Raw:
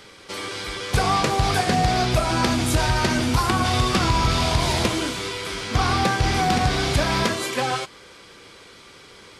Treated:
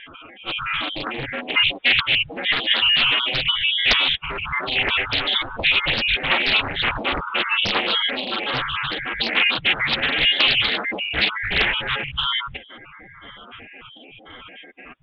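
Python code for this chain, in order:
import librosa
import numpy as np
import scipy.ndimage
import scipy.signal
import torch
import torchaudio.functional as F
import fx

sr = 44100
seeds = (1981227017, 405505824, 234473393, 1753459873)

p1 = fx.spec_dropout(x, sr, seeds[0], share_pct=53)
p2 = fx.highpass(p1, sr, hz=400.0, slope=6)
p3 = fx.rider(p2, sr, range_db=4, speed_s=0.5)
p4 = p2 + F.gain(torch.from_numpy(p3), 3.0).numpy()
p5 = fx.quant_companded(p4, sr, bits=6)
p6 = fx.stretch_vocoder(p5, sr, factor=1.6)
p7 = fx.freq_invert(p6, sr, carrier_hz=3600)
y = fx.doppler_dist(p7, sr, depth_ms=0.9)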